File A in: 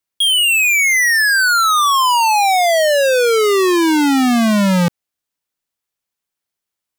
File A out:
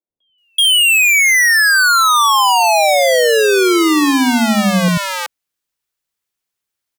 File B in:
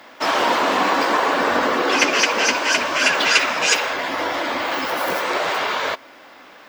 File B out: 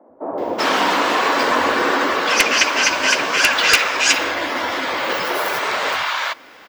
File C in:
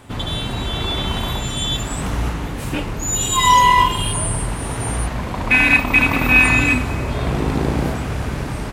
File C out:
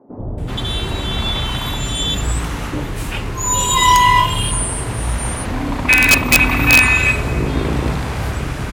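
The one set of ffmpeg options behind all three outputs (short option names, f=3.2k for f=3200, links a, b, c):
-filter_complex "[0:a]acrossover=split=210|710[a][b][c];[a]adelay=90[d];[c]adelay=380[e];[d][b][e]amix=inputs=3:normalize=0,aeval=exprs='(mod(1.5*val(0)+1,2)-1)/1.5':c=same,volume=2.5dB"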